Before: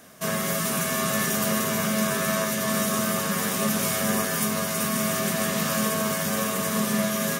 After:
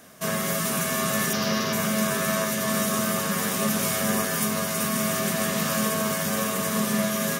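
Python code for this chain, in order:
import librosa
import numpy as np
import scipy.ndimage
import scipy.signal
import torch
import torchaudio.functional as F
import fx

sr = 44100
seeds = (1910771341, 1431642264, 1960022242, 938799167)

y = fx.high_shelf_res(x, sr, hz=6600.0, db=-8.5, q=3.0, at=(1.33, 1.73))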